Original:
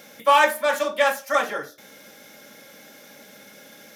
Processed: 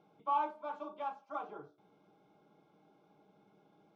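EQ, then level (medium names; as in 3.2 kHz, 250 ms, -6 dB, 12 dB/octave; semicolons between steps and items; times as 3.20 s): tape spacing loss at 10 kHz 40 dB; treble shelf 3.2 kHz -10.5 dB; static phaser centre 360 Hz, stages 8; -9.0 dB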